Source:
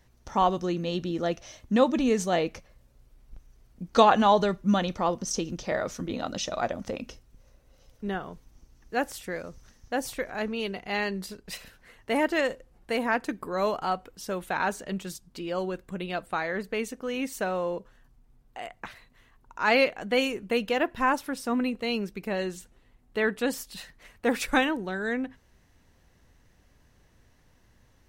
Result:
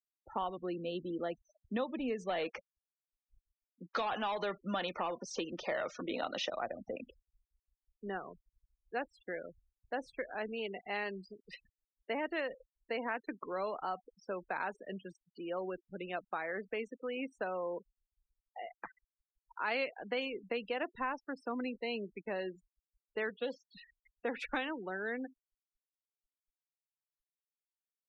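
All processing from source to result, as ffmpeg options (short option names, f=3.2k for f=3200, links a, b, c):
-filter_complex "[0:a]asettb=1/sr,asplit=3[a][b][c];[a]atrim=end=2.294[d];[b]atrim=start=2.29:end=6.5,asetpts=PTS-STARTPTS,afade=t=in:d=0.004:c=qsin,afade=t=out:st=4.206:d=0.004:c=qsin,acompressor=threshold=-22dB:ratio=3:attack=3.2:release=140:knee=1:detection=peak,asplit=2[e][f];[f]highpass=f=720:p=1,volume=16dB,asoftclip=type=tanh:threshold=-13dB[g];[e][g]amix=inputs=2:normalize=0,lowpass=f=6.9k:p=1,volume=-6dB[h];[c]atrim=start=6.496[i];[d][h]acrossfade=d=0.004:c1=hsin:c2=qsin[j];[j][i]acrossfade=d=0.004:c1=qsin:c2=hsin,asettb=1/sr,asplit=3[k][l][m];[k]atrim=end=23.294[n];[l]atrim=start=23.29:end=23.73,asetpts=PTS-STARTPTS,afade=t=in:d=0.004:c=qsin,afade=t=out:st=0.436:d=0.004:c=qsin,bandreject=f=420:w=8.1,volume=21dB,asoftclip=hard,volume=-21dB,highpass=110,equalizer=f=340:t=q:w=4:g=-9,equalizer=f=520:t=q:w=4:g=6,equalizer=f=1.7k:t=q:w=4:g=-7,equalizer=f=3.4k:t=q:w=4:g=8,lowpass=f=7.5k:w=0.5412,lowpass=f=7.5k:w=1.3066[o];[m]atrim=start=23.726[p];[n][o]acrossfade=d=0.004:c1=hsin:c2=qsin[q];[q][p]acrossfade=d=0.004:c1=qsin:c2=hsin,afftfilt=real='re*gte(hypot(re,im),0.02)':imag='im*gte(hypot(re,im),0.02)':win_size=1024:overlap=0.75,acrossover=split=260 3600:gain=0.224 1 0.0631[r][s][t];[r][s][t]amix=inputs=3:normalize=0,acrossover=split=140|3000[u][v][w];[v]acompressor=threshold=-29dB:ratio=4[x];[u][x][w]amix=inputs=3:normalize=0,volume=-5dB"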